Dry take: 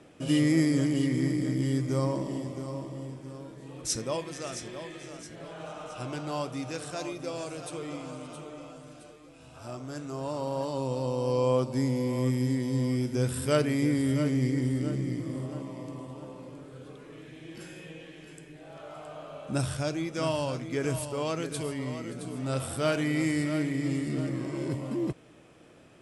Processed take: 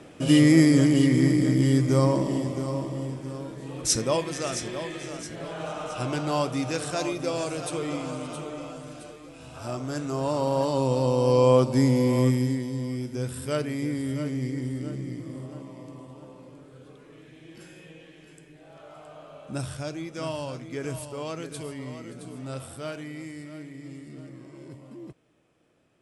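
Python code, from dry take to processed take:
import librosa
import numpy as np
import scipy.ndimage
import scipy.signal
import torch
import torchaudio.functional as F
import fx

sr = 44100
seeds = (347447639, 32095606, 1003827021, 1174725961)

y = fx.gain(x, sr, db=fx.line((12.2, 7.0), (12.76, -3.0), (22.32, -3.0), (23.3, -12.0)))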